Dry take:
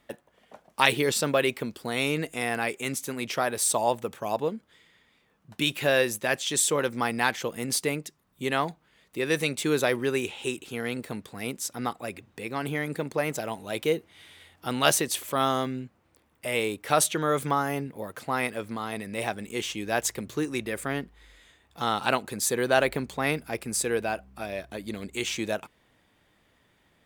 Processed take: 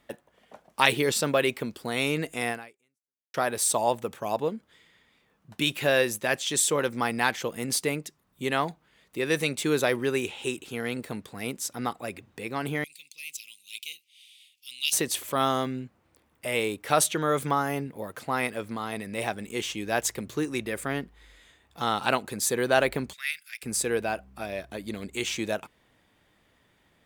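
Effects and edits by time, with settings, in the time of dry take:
0:02.50–0:03.34: fade out exponential
0:12.84–0:14.93: elliptic high-pass filter 2,500 Hz
0:23.13–0:23.63: inverse Chebyshev high-pass filter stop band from 920 Hz

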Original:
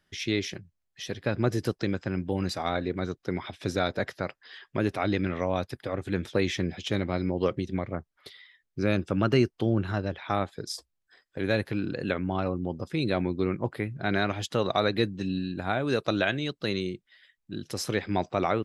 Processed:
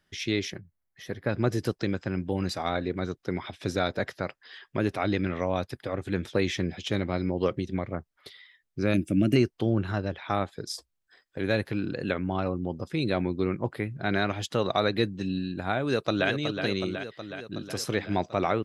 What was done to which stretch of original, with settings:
0:00.50–0:01.30: gain on a spectral selection 2,300–10,000 Hz −9 dB
0:08.94–0:09.36: drawn EQ curve 120 Hz 0 dB, 310 Hz +7 dB, 450 Hz −11 dB, 640 Hz −3 dB, 900 Hz −25 dB, 1,600 Hz −11 dB, 2,300 Hz +2 dB, 4,200 Hz −9 dB, 9,700 Hz +14 dB
0:15.82–0:16.29: delay throw 370 ms, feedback 70%, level −7 dB

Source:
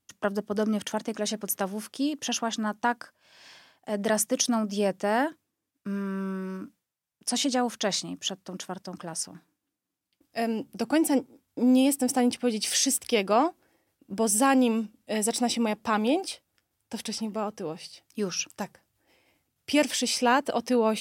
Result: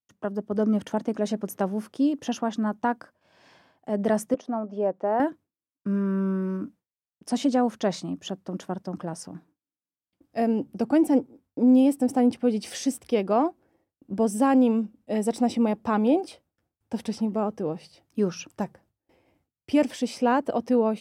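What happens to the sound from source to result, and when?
0:04.34–0:05.20: resonant band-pass 710 Hz, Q 0.97
whole clip: noise gate with hold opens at −58 dBFS; tilt shelving filter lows +8.5 dB, about 1,500 Hz; automatic gain control gain up to 7.5 dB; level −9 dB

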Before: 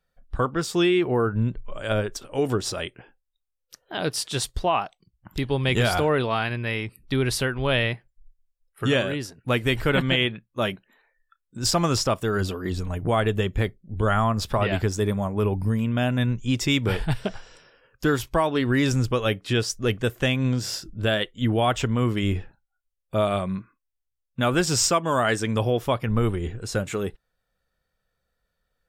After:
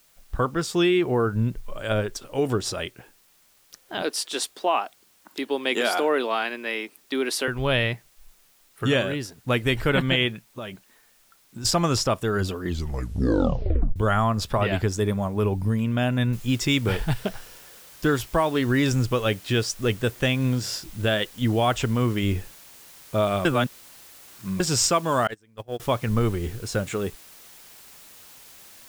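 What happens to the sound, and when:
0:04.02–0:07.48: Butterworth high-pass 250 Hz
0:10.49–0:11.65: downward compressor, threshold −31 dBFS
0:12.63: tape stop 1.33 s
0:16.33: noise floor change −60 dB −48 dB
0:23.45–0:24.60: reverse
0:25.27–0:25.80: noise gate −20 dBFS, range −33 dB

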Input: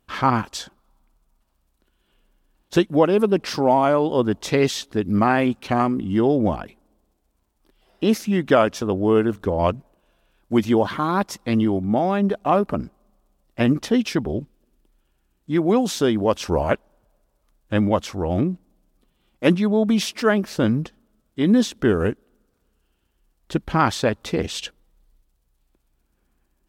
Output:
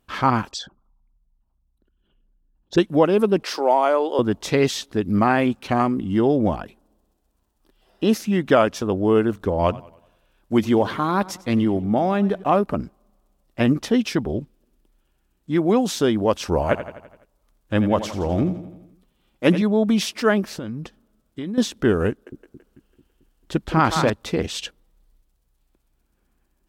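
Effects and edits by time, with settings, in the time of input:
0:00.51–0:02.78: spectral envelope exaggerated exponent 2
0:03.43–0:04.19: high-pass filter 350 Hz 24 dB per octave
0:06.59–0:08.19: notch filter 2,200 Hz, Q 9.9
0:09.53–0:12.44: feedback echo with a swinging delay time 95 ms, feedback 44%, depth 102 cents, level −20 dB
0:16.61–0:19.62: repeating echo 84 ms, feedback 56%, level −12 dB
0:20.51–0:21.58: downward compressor, threshold −27 dBFS
0:22.10–0:24.10: echo with a time of its own for lows and highs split 390 Hz, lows 221 ms, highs 166 ms, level −5 dB

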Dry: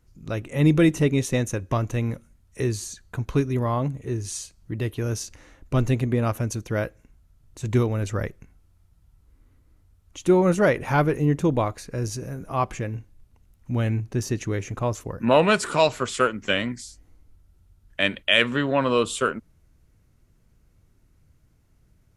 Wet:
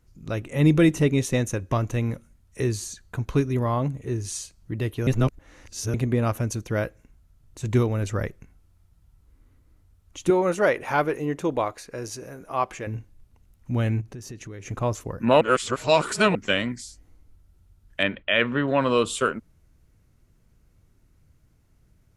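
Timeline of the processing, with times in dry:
0:05.07–0:05.94: reverse
0:10.30–0:12.87: bass and treble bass −13 dB, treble −2 dB
0:14.01–0:14.66: downward compressor 4 to 1, threshold −37 dBFS
0:15.41–0:16.35: reverse
0:18.03–0:18.68: low-pass filter 2,300 Hz

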